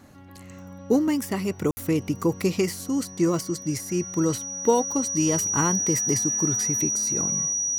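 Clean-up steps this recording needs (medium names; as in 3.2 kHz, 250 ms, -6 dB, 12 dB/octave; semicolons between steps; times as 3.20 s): band-stop 5.8 kHz, Q 30; room tone fill 1.71–1.77 s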